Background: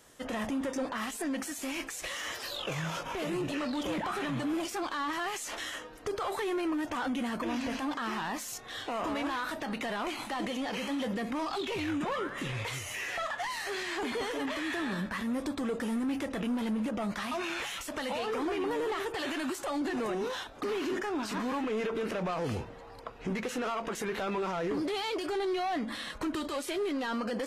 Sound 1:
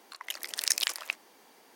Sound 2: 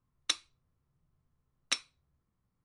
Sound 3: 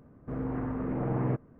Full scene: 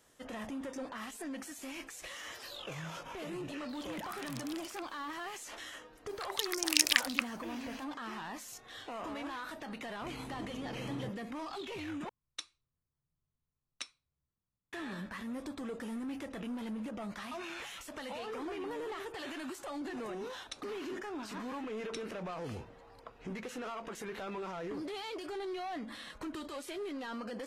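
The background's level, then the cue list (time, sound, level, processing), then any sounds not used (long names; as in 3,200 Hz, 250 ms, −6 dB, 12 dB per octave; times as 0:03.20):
background −8 dB
0:03.69: mix in 1 −6 dB + downward compressor 3 to 1, threshold −43 dBFS
0:06.09: mix in 1 −1.5 dB + high-pass on a step sequencer 11 Hz 360–5,900 Hz
0:09.74: mix in 3 −13.5 dB
0:12.09: overwrite with 2 −12 dB
0:20.22: mix in 2 −15 dB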